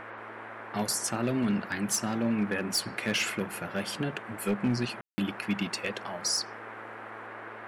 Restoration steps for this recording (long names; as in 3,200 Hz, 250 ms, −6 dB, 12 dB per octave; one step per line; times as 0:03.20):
clipped peaks rebuilt −21 dBFS
hum removal 110.9 Hz, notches 15
ambience match 0:05.01–0:05.18
noise reduction from a noise print 30 dB